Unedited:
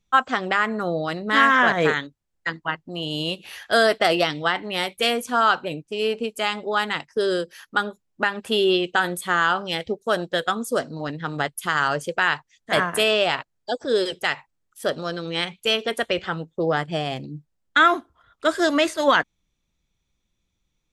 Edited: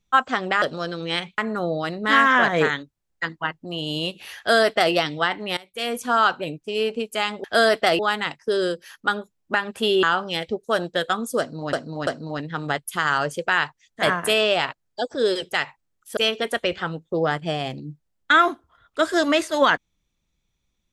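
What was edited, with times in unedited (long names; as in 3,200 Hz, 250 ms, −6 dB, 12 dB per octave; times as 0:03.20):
0:03.62–0:04.17: duplicate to 0:06.68
0:04.81–0:05.21: fade in quadratic, from −19.5 dB
0:08.72–0:09.41: remove
0:10.77–0:11.11: repeat, 3 plays
0:14.87–0:15.63: move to 0:00.62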